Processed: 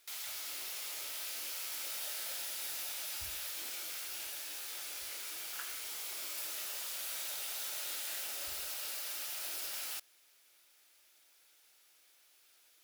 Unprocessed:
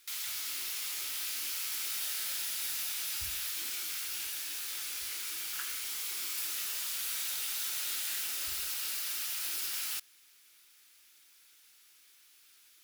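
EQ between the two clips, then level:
parametric band 630 Hz +14 dB 0.96 octaves
−5.0 dB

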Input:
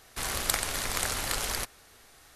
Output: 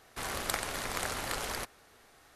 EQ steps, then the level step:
low-shelf EQ 100 Hz −9 dB
high-shelf EQ 2,500 Hz −8.5 dB
0.0 dB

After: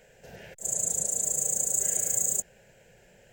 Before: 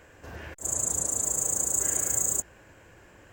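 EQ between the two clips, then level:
parametric band 310 Hz −6.5 dB 0.23 octaves
phaser with its sweep stopped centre 300 Hz, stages 6
0.0 dB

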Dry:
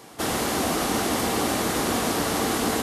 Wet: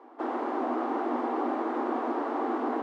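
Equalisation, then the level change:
Chebyshev high-pass with heavy ripple 240 Hz, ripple 6 dB
low-pass filter 1,100 Hz 12 dB per octave
0.0 dB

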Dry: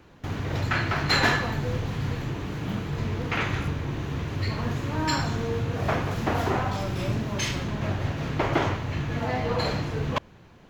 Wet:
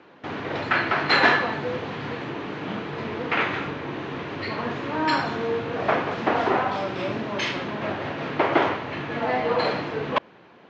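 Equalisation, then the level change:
band-pass filter 300–4,400 Hz
high-frequency loss of the air 110 metres
+6.0 dB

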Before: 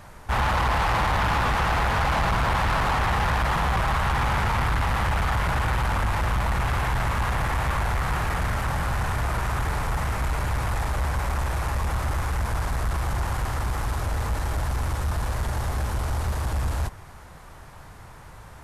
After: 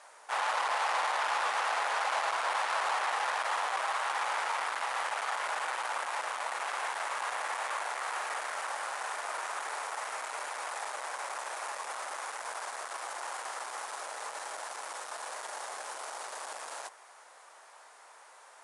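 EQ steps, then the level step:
high-pass filter 520 Hz 24 dB per octave
Chebyshev low-pass filter 10,000 Hz, order 5
high-shelf EQ 7,200 Hz +9.5 dB
−6.0 dB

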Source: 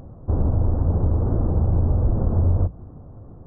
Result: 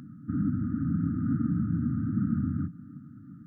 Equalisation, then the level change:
high-pass filter 160 Hz 24 dB per octave
linear-phase brick-wall band-stop 310–1,200 Hz
+3.5 dB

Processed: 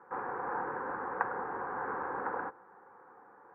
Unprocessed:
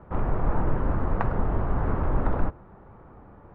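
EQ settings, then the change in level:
Butterworth band-reject 640 Hz, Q 3.5
loudspeaker in its box 460–2,000 Hz, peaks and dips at 500 Hz +4 dB, 720 Hz +6 dB, 1,000 Hz +4 dB, 1,600 Hz +10 dB
−5.5 dB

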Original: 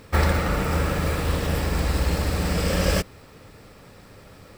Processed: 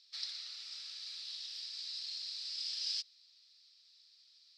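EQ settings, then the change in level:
flat-topped band-pass 4,500 Hz, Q 2.9
−1.0 dB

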